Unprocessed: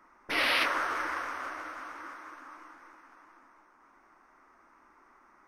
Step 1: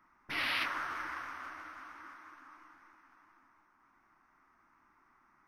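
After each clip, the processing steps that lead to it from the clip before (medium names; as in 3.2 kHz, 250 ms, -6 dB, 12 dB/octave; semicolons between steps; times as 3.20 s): graphic EQ 125/500/8000 Hz +8/-11/-6 dB; trim -5.5 dB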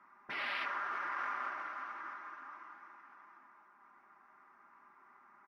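comb 5 ms, depth 55%; in parallel at -0.5 dB: compressor with a negative ratio -42 dBFS, ratio -0.5; on the sum: band-pass filter 860 Hz, Q 0.58; trim -2.5 dB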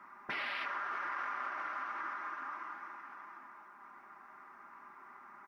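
compression 4:1, threshold -45 dBFS, peak gain reduction 9.5 dB; trim +8 dB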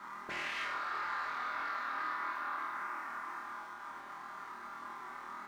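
waveshaping leveller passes 2; peak limiter -34 dBFS, peak gain reduction 7.5 dB; on a send: flutter echo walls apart 4.3 m, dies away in 0.55 s; on the sum: trim -2 dB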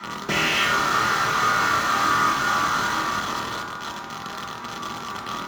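in parallel at -7 dB: companded quantiser 2-bit; on the sum: reverberation RT60 1.1 s, pre-delay 3 ms, DRR 0 dB; tape noise reduction on one side only encoder only; trim +4 dB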